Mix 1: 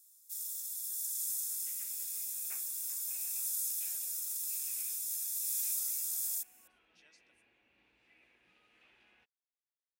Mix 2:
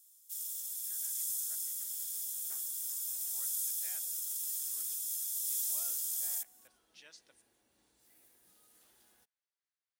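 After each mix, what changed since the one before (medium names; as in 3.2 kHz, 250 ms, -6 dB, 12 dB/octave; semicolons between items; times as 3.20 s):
speech +10.5 dB; first sound: remove Butterworth band-stop 3.1 kHz, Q 4.9; second sound: remove resonant low-pass 2.5 kHz, resonance Q 6.8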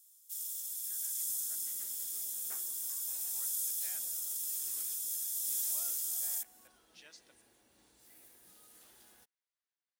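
second sound +6.0 dB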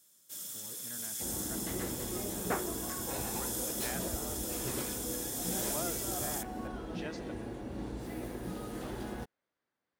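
second sound +6.0 dB; master: remove pre-emphasis filter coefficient 0.97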